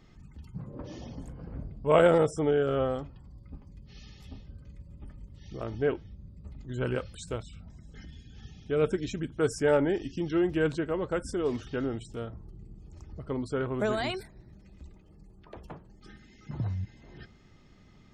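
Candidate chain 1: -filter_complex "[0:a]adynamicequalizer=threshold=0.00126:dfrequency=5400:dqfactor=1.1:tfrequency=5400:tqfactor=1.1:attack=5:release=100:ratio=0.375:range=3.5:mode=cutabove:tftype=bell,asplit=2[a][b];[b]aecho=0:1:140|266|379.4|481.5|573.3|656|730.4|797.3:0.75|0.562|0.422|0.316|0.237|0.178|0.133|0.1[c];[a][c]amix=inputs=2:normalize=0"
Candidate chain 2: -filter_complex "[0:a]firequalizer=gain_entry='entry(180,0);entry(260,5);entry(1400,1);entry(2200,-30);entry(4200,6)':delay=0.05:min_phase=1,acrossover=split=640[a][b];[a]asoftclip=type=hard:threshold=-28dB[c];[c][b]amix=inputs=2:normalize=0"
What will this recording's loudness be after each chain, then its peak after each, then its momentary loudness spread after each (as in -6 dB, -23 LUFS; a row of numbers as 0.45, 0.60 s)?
-26.5, -30.5 LUFS; -8.0, -10.0 dBFS; 23, 22 LU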